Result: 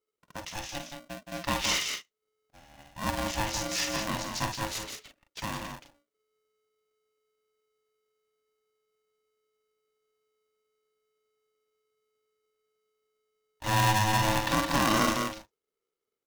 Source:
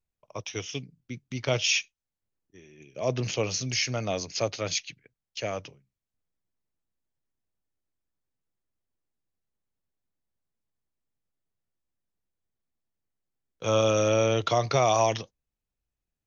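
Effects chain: 4.48–5.39 s: one-sided clip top -38 dBFS; multi-tap echo 49/53/171/208 ms -9/-10.5/-6/-12 dB; polarity switched at an audio rate 430 Hz; trim -4 dB

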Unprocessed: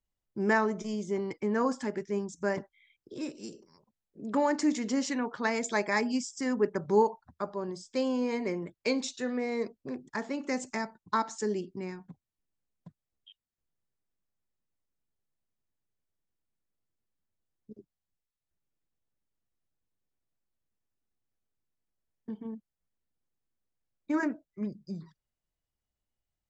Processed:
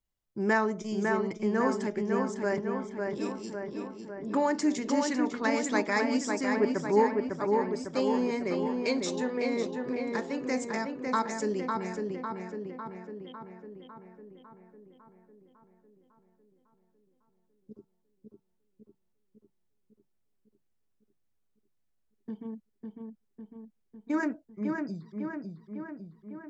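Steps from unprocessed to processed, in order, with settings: filtered feedback delay 552 ms, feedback 63%, low-pass 3 kHz, level -3.5 dB

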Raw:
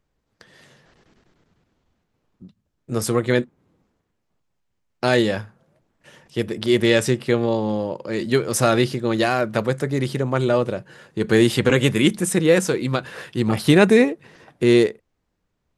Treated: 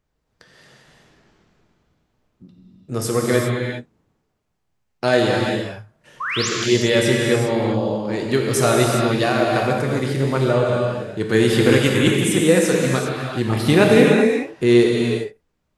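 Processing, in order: painted sound rise, 6.20–6.49 s, 980–7900 Hz -24 dBFS; gated-style reverb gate 430 ms flat, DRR -1.5 dB; trim -1.5 dB

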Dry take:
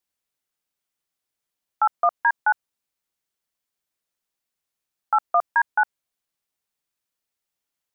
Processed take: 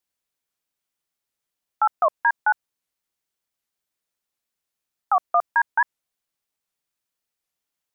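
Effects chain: warped record 78 rpm, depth 250 cents

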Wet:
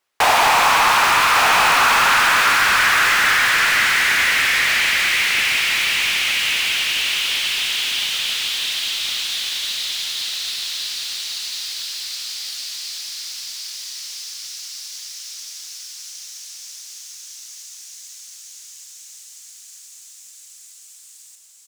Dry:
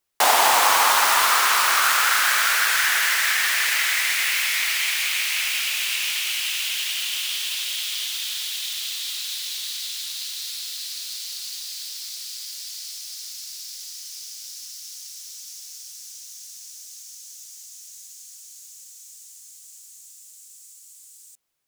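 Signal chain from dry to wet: rattle on loud lows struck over -49 dBFS, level -12 dBFS; on a send: delay 1157 ms -4 dB; on the sum: overdrive pedal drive 18 dB, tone 2.3 kHz, clips at -3.5 dBFS; trim -1 dB

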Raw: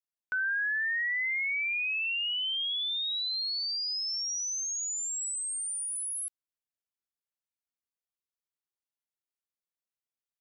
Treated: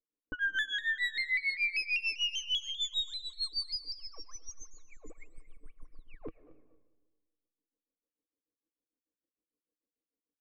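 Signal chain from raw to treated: comb filter that takes the minimum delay 3.8 ms; level-controlled noise filter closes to 540 Hz, open at -29 dBFS; low-pass 3.3 kHz 6 dB/octave; small resonant body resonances 310/450/1100/2200 Hz, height 18 dB, ringing for 60 ms; peak limiter -30.5 dBFS, peak gain reduction 11.5 dB; tremolo 6.7 Hz, depth 96%; level-controlled noise filter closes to 790 Hz, open at -34.5 dBFS; feedback delay 229 ms, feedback 28%, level -19.5 dB; reverberation RT60 1.4 s, pre-delay 90 ms, DRR 15.5 dB; vibrato with a chosen wave saw down 5.1 Hz, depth 100 cents; trim +6.5 dB

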